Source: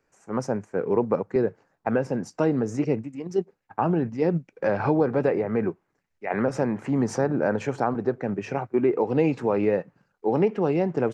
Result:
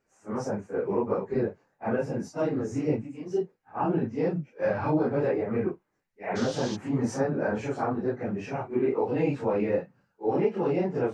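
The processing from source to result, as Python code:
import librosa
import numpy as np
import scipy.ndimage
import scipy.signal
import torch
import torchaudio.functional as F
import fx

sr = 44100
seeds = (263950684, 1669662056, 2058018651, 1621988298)

y = fx.phase_scramble(x, sr, seeds[0], window_ms=100)
y = fx.dmg_noise_band(y, sr, seeds[1], low_hz=2800.0, high_hz=6400.0, level_db=-39.0, at=(6.35, 6.75), fade=0.02)
y = y * librosa.db_to_amplitude(-3.5)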